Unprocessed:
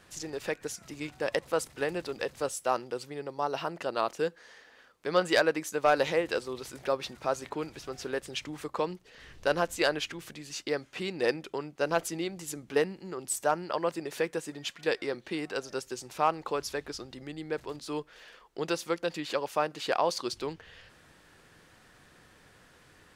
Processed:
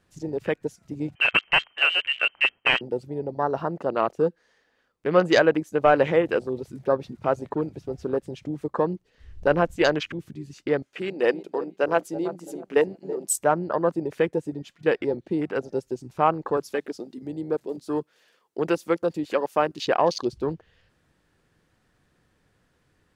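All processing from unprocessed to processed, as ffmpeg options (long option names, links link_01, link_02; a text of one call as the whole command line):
ffmpeg -i in.wav -filter_complex "[0:a]asettb=1/sr,asplit=3[link_01][link_02][link_03];[link_01]atrim=end=1.154[link_04];[link_02]atrim=start=1.15:end=2.81,asetpts=PTS-STARTPTS,afade=type=in:duration=0.004:curve=qsin,afade=type=out:start_time=1.656:duration=0.004:curve=qsin,acontrast=47,aeval=exprs='(mod(4.73*val(0)+1,2)-1)/4.73':channel_layout=same,lowpass=frequency=2700:width_type=q:width=0.5098,lowpass=frequency=2700:width_type=q:width=0.6013,lowpass=frequency=2700:width_type=q:width=0.9,lowpass=frequency=2700:width_type=q:width=2.563,afreqshift=-3200[link_05];[link_03]atrim=start=2.806[link_06];[link_04][link_05]acrossfade=duration=0.004:curve1=hsin:curve2=qsin[link_07];[link_07][link_06]acrossfade=duration=0.004:curve1=qsin:curve2=hsin,asettb=1/sr,asplit=3[link_08][link_09][link_10];[link_08]atrim=end=10.824[link_11];[link_09]atrim=start=10.82:end=13.36,asetpts=PTS-STARTPTS,afade=type=in:duration=0.004:curve=qsin,afade=type=out:start_time=2.536:duration=0.004:curve=qsin,bass=frequency=250:gain=-12,treble=frequency=4000:gain=4,asplit=2[link_12][link_13];[link_13]adelay=331,lowpass=frequency=2500:poles=1,volume=-12dB,asplit=2[link_14][link_15];[link_15]adelay=331,lowpass=frequency=2500:poles=1,volume=0.41,asplit=2[link_16][link_17];[link_17]adelay=331,lowpass=frequency=2500:poles=1,volume=0.41,asplit=2[link_18][link_19];[link_19]adelay=331,lowpass=frequency=2500:poles=1,volume=0.41[link_20];[link_12][link_14][link_16][link_18][link_20]amix=inputs=5:normalize=0,atrim=end_sample=112014[link_21];[link_10]atrim=start=13.356[link_22];[link_11][link_21]acrossfade=duration=0.004:curve1=hsin:curve2=qsin[link_23];[link_23][link_22]acrossfade=duration=0.004:curve1=qsin:curve2=hsin,asettb=1/sr,asplit=3[link_24][link_25][link_26];[link_24]atrim=end=16.574[link_27];[link_25]atrim=start=16.57:end=19.85,asetpts=PTS-STARTPTS,afade=type=in:duration=0.004:curve=qsin,afade=type=out:start_time=3.276:duration=0.004:curve=qsin,highpass=180,highshelf=frequency=6000:gain=11[link_28];[link_26]atrim=start=19.846[link_29];[link_27][link_28]acrossfade=duration=0.004:curve1=hsin:curve2=qsin[link_30];[link_30][link_29]acrossfade=duration=0.004:curve1=qsin:curve2=hsin,afwtdn=0.0141,lowshelf=frequency=410:gain=8.5,volume=4dB" out.wav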